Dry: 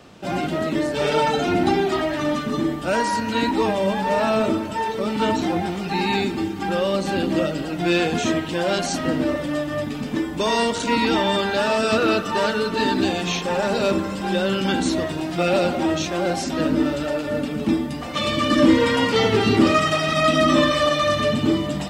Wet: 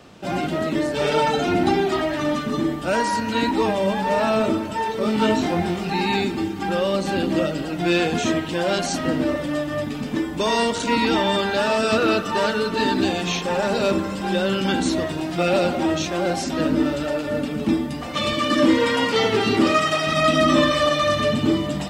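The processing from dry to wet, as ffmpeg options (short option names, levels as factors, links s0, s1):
-filter_complex "[0:a]asettb=1/sr,asplit=3[s0][s1][s2];[s0]atrim=end=4.994[s3];[s1]atrim=start=4.99:end=5.9,asetpts=PTS-STARTPTS,afade=t=in:d=0.004:c=qsin,afade=t=out:st=0.906:d=0.004:c=qsin,asplit=2[s4][s5];[s5]adelay=23,volume=0.631[s6];[s4][s6]amix=inputs=2:normalize=0,atrim=end_sample=40131[s7];[s2]atrim=start=5.896[s8];[s3][s7]acrossfade=d=0.004:c1=hsin:c2=qsin[s9];[s9][s8]acrossfade=d=0.004:c1=qsin:c2=hsin,asettb=1/sr,asplit=3[s10][s11][s12];[s10]atrim=end=18.334[s13];[s11]atrim=start=18.33:end=20.07,asetpts=PTS-STARTPTS,afade=t=in:d=0.004:c=qsin,afade=t=out:st=1.736:d=0.004:c=qsin,lowshelf=f=150:g=-10[s14];[s12]atrim=start=20.066[s15];[s13][s14]acrossfade=d=0.004:c1=hsin:c2=qsin[s16];[s16][s15]acrossfade=d=0.004:c1=qsin:c2=hsin"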